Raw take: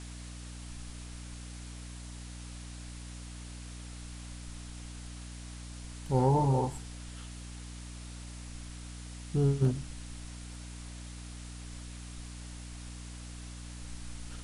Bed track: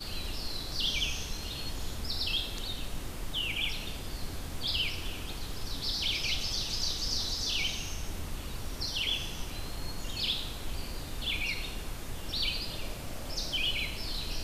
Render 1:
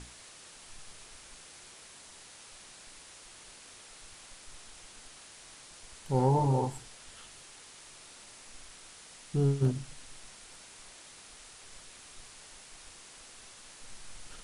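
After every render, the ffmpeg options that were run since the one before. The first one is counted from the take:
-af "bandreject=f=60:t=h:w=6,bandreject=f=120:t=h:w=6,bandreject=f=180:t=h:w=6,bandreject=f=240:t=h:w=6,bandreject=f=300:t=h:w=6"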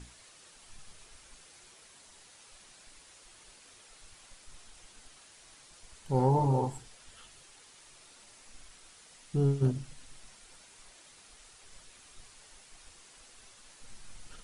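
-af "afftdn=nr=6:nf=-52"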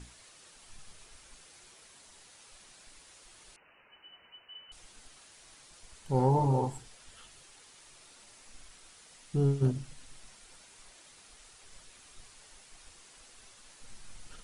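-filter_complex "[0:a]asettb=1/sr,asplit=3[a][b][c];[a]atrim=end=3.564[d];[b]atrim=start=3.56:end=4.72,asetpts=PTS-STARTPTS,afade=t=in:d=0.004:c=qsin,afade=t=out:st=1.156:d=0.004:c=qsin,lowpass=f=2.6k:t=q:w=0.5098,lowpass=f=2.6k:t=q:w=0.6013,lowpass=f=2.6k:t=q:w=0.9,lowpass=f=2.6k:t=q:w=2.563,afreqshift=-3000[e];[c]atrim=start=4.716[f];[d][e]acrossfade=d=0.004:c1=hsin:c2=qsin[g];[g][f]acrossfade=d=0.004:c1=qsin:c2=hsin"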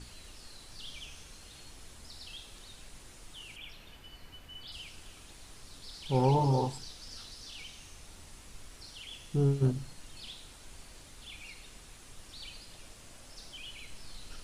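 -filter_complex "[1:a]volume=-15.5dB[a];[0:a][a]amix=inputs=2:normalize=0"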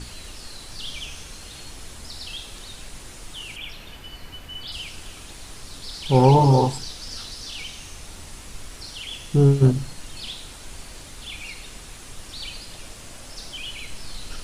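-af "volume=11.5dB"

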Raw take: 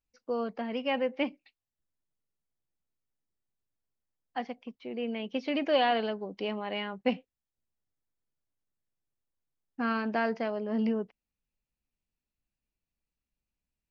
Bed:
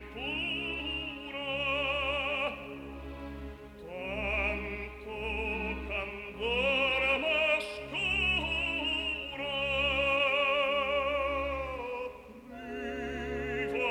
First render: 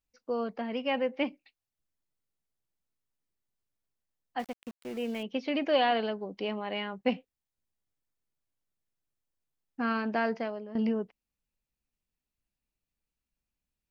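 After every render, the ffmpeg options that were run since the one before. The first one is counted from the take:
-filter_complex "[0:a]asettb=1/sr,asplit=3[a][b][c];[a]atrim=end=4.394[d];[b]atrim=start=4.39:end=5.23,asetpts=PTS-STARTPTS,afade=t=in:d=0.004:c=qsin,afade=t=out:st=0.836:d=0.004:c=qsin,aeval=exprs='val(0)*gte(abs(val(0)),0.00596)':c=same[e];[c]atrim=start=5.226[f];[d][e]acrossfade=d=0.004:c1=hsin:c2=qsin[g];[g][f]acrossfade=d=0.004:c1=qsin:c2=hsin,asplit=2[h][i];[h]atrim=end=10.75,asetpts=PTS-STARTPTS,afade=t=out:st=10.35:d=0.4:silence=0.211349[j];[i]atrim=start=10.75,asetpts=PTS-STARTPTS,afade=t=in:d=0.004:c=hsin:silence=0.211349[k];[j][k]concat=n=2:v=0:a=1"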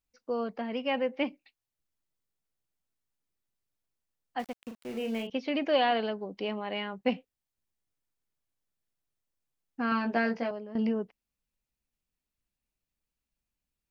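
-filter_complex "[0:a]asettb=1/sr,asplit=3[a][b][c];[a]atrim=end=4.594[d];[b]atrim=start=4.59:end=5.3,asetpts=PTS-STARTPTS,afade=t=in:d=0.004:c=qsin,afade=t=out:st=0.706:d=0.004:c=qsin,asplit=2[e][f];[f]adelay=40,volume=-6dB[g];[e][g]amix=inputs=2:normalize=0,atrim=end_sample=31311[h];[c]atrim=start=5.296[i];[d][h]acrossfade=d=0.004:c1=hsin:c2=qsin[j];[j][i]acrossfade=d=0.004:c1=qsin:c2=hsin,asettb=1/sr,asplit=3[k][l][m];[k]atrim=end=9.904[n];[l]atrim=start=9.9:end=10.51,asetpts=PTS-STARTPTS,afade=t=in:d=0.004:c=qsin,afade=t=out:st=0.606:d=0.004:c=qsin,asplit=2[o][p];[p]adelay=17,volume=-3dB[q];[o][q]amix=inputs=2:normalize=0,atrim=end_sample=26901[r];[m]atrim=start=10.506[s];[n][r]acrossfade=d=0.004:c1=hsin:c2=qsin[t];[t][s]acrossfade=d=0.004:c1=qsin:c2=hsin"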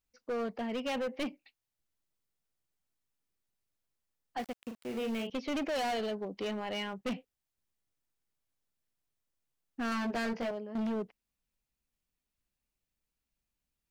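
-af "asoftclip=type=hard:threshold=-31dB"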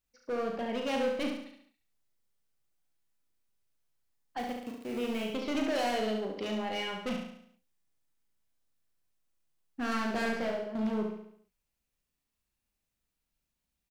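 -filter_complex "[0:a]asplit=2[a][b];[b]adelay=37,volume=-6dB[c];[a][c]amix=inputs=2:normalize=0,aecho=1:1:70|140|210|280|350|420:0.562|0.276|0.135|0.0662|0.0324|0.0159"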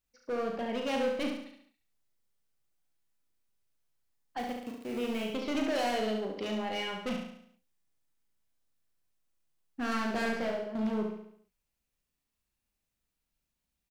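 -af anull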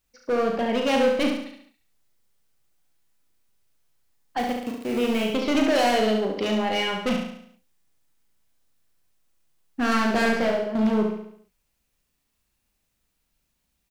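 -af "volume=10dB"

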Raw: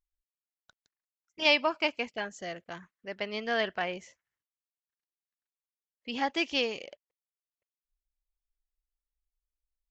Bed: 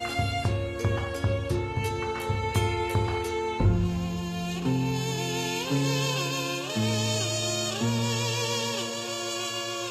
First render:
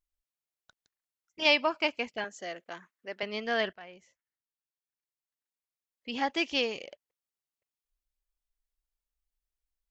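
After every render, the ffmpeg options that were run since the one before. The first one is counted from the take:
-filter_complex "[0:a]asettb=1/sr,asplit=3[a][b][c];[a]atrim=end=2.244[d];[b]atrim=start=2.24:end=3.23,asetpts=PTS-STARTPTS,afade=t=in:d=0.004:c=qsin,afade=t=out:st=0.986:d=0.004:c=qsin,highpass=270[e];[c]atrim=start=3.226[f];[d][e]acrossfade=d=0.004:c1=hsin:c2=qsin[g];[g][f]acrossfade=d=0.004:c1=qsin:c2=hsin,asplit=2[h][i];[h]atrim=end=3.73,asetpts=PTS-STARTPTS,afade=t=out:st=3.726:d=0.004:c=hsin:silence=0.133352[j];[i]atrim=start=3.73,asetpts=PTS-STARTPTS,afade=t=in:d=2.49:silence=0.133352[k];[j][k]concat=n=2:v=0:a=1"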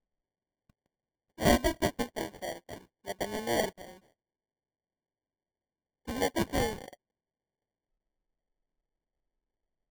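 -af "acrusher=samples=34:mix=1:aa=0.000001"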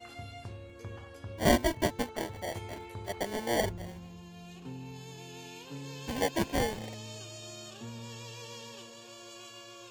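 -filter_complex "[1:a]volume=-17dB[a];[0:a][a]amix=inputs=2:normalize=0"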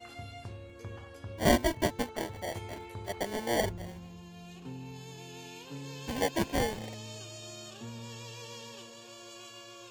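-af anull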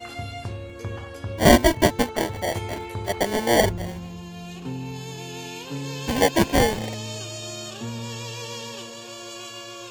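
-af "volume=11dB,alimiter=limit=-3dB:level=0:latency=1"

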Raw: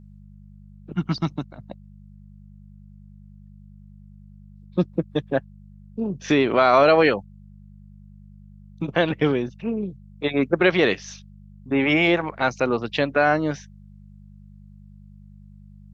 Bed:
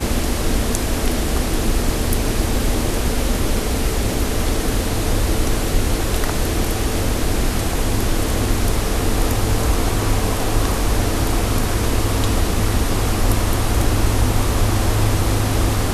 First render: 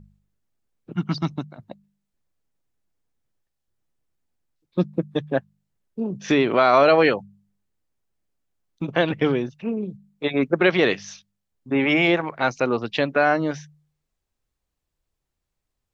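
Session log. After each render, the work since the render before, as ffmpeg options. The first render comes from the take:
-af "bandreject=f=50:t=h:w=4,bandreject=f=100:t=h:w=4,bandreject=f=150:t=h:w=4,bandreject=f=200:t=h:w=4"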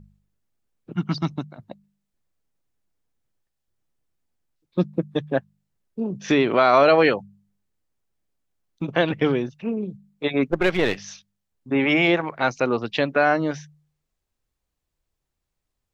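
-filter_complex "[0:a]asettb=1/sr,asplit=3[a][b][c];[a]atrim=end=10.514[d];[b]atrim=start=10.51:end=10.97,asetpts=PTS-STARTPTS,afade=t=in:d=0.004:c=qsin,afade=t=out:st=0.456:d=0.004:c=qsin,aeval=exprs='if(lt(val(0),0),0.447*val(0),val(0))':c=same[e];[c]atrim=start=10.966[f];[d][e]acrossfade=d=0.004:c1=hsin:c2=qsin[g];[g][f]acrossfade=d=0.004:c1=qsin:c2=hsin"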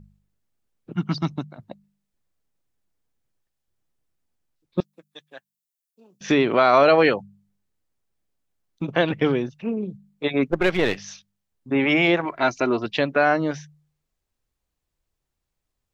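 -filter_complex "[0:a]asettb=1/sr,asplit=3[a][b][c];[a]atrim=end=4.804[d];[b]atrim=start=4.8:end=6.21,asetpts=PTS-STARTPTS,afade=t=in:d=0.004:c=qsin,afade=t=out:st=1.406:d=0.004:c=qsin,aderivative[e];[c]atrim=start=6.206[f];[d][e]acrossfade=d=0.004:c1=hsin:c2=qsin[g];[g][f]acrossfade=d=0.004:c1=qsin:c2=hsin,asettb=1/sr,asplit=3[h][i][j];[h]atrim=end=12.254[k];[i]atrim=start=12.25:end=12.86,asetpts=PTS-STARTPTS,afade=t=in:d=0.004:c=qsin,afade=t=out:st=0.606:d=0.004:c=qsin,aecho=1:1:3:0.64,atrim=end_sample=26901[l];[j]atrim=start=12.856[m];[k][l]acrossfade=d=0.004:c1=hsin:c2=qsin[n];[n][m]acrossfade=d=0.004:c1=qsin:c2=hsin"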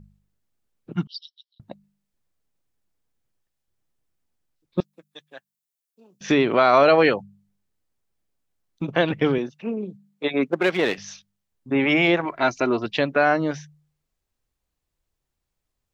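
-filter_complex "[0:a]asettb=1/sr,asplit=3[a][b][c];[a]atrim=end=1.074[d];[b]atrim=start=1.07:end=1.6,asetpts=PTS-STARTPTS,afade=t=in:d=0.004:c=qsin,afade=t=out:st=0.526:d=0.004:c=qsin,asuperpass=centerf=4100:order=20:qfactor=1.6[e];[c]atrim=start=1.596[f];[d][e]acrossfade=d=0.004:c1=hsin:c2=qsin[g];[g][f]acrossfade=d=0.004:c1=qsin:c2=hsin,asettb=1/sr,asplit=3[h][i][j];[h]atrim=end=9.384[k];[i]atrim=start=9.38:end=10.98,asetpts=PTS-STARTPTS,afade=t=in:d=0.004:c=qsin,afade=t=out:st=1.596:d=0.004:c=qsin,highpass=200[l];[j]atrim=start=10.976[m];[k][l]acrossfade=d=0.004:c1=hsin:c2=qsin[n];[n][m]acrossfade=d=0.004:c1=qsin:c2=hsin"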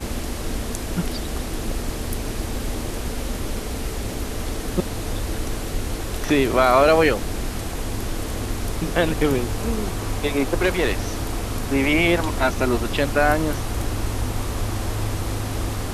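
-filter_complex "[1:a]volume=-8dB[a];[0:a][a]amix=inputs=2:normalize=0"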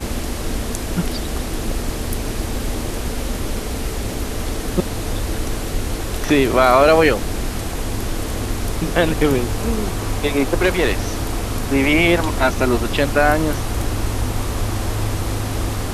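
-af "volume=3.5dB,alimiter=limit=-2dB:level=0:latency=1"

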